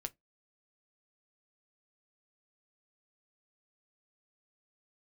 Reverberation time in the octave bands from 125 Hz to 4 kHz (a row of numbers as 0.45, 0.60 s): 0.20, 0.20, 0.15, 0.15, 0.15, 0.10 s